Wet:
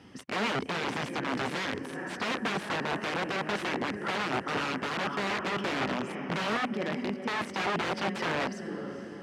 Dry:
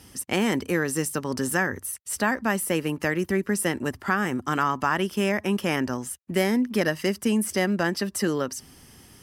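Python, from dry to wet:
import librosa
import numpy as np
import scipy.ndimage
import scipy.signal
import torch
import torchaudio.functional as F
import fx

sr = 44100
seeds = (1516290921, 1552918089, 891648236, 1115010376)

y = fx.low_shelf(x, sr, hz=290.0, db=3.0)
y = fx.level_steps(y, sr, step_db=16, at=(6.73, 7.27), fade=0.02)
y = fx.echo_diffused(y, sr, ms=463, feedback_pct=53, wet_db=-13.5)
y = (np.mod(10.0 ** (22.5 / 20.0) * y + 1.0, 2.0) - 1.0) / 10.0 ** (22.5 / 20.0)
y = fx.bandpass_edges(y, sr, low_hz=150.0, high_hz=2800.0)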